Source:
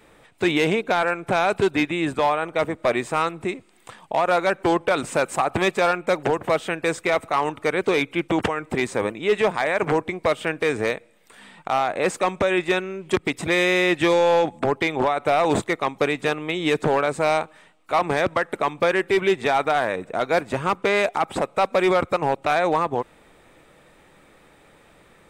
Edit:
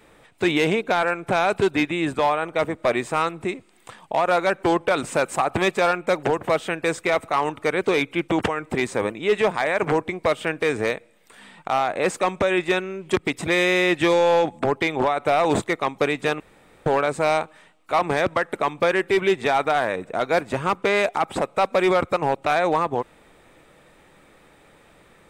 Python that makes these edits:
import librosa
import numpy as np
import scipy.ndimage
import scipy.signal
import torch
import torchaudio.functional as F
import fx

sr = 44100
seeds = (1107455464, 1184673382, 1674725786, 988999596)

y = fx.edit(x, sr, fx.room_tone_fill(start_s=16.4, length_s=0.46), tone=tone)